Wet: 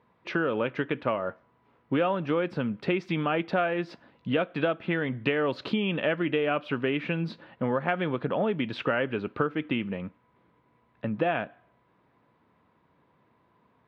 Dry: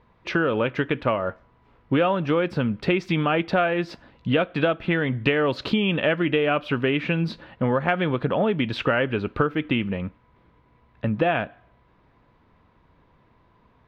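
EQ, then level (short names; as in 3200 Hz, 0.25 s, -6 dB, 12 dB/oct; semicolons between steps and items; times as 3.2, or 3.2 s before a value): HPF 140 Hz 12 dB/oct; LPF 3900 Hz 6 dB/oct; -4.5 dB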